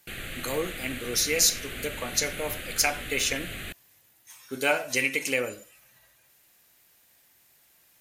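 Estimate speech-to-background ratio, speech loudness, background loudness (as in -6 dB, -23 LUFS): 9.5 dB, -27.0 LUFS, -36.5 LUFS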